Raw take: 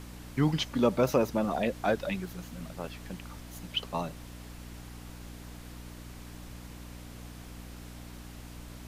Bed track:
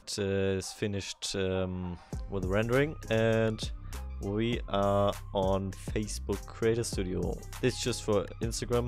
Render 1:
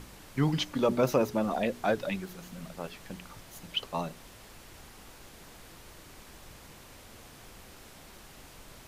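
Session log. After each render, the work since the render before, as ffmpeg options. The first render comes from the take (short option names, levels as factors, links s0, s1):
-af "bandreject=f=60:t=h:w=4,bandreject=f=120:t=h:w=4,bandreject=f=180:t=h:w=4,bandreject=f=240:t=h:w=4,bandreject=f=300:t=h:w=4,bandreject=f=360:t=h:w=4,bandreject=f=420:t=h:w=4"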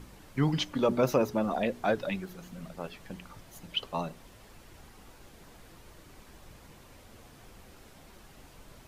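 -af "afftdn=nr=6:nf=-52"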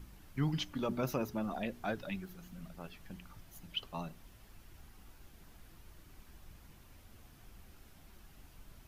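-af "equalizer=f=125:t=o:w=1:g=-4,equalizer=f=250:t=o:w=1:g=-4,equalizer=f=500:t=o:w=1:g=-11,equalizer=f=1000:t=o:w=1:g=-6,equalizer=f=2000:t=o:w=1:g=-5,equalizer=f=4000:t=o:w=1:g=-5,equalizer=f=8000:t=o:w=1:g=-7"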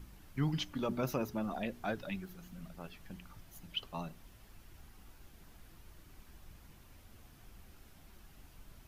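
-af anull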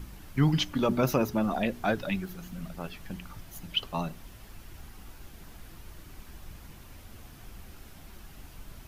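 -af "volume=2.99"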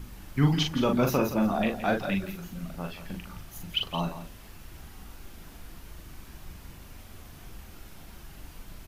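-filter_complex "[0:a]asplit=2[s0][s1];[s1]adelay=41,volume=0.596[s2];[s0][s2]amix=inputs=2:normalize=0,aecho=1:1:169:0.251"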